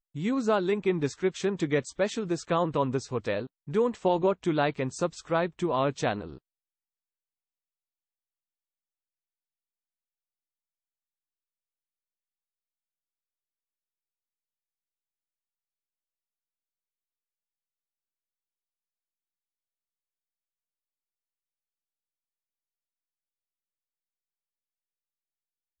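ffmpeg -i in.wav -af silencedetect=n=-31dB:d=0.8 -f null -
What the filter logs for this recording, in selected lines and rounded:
silence_start: 6.26
silence_end: 25.80 | silence_duration: 19.54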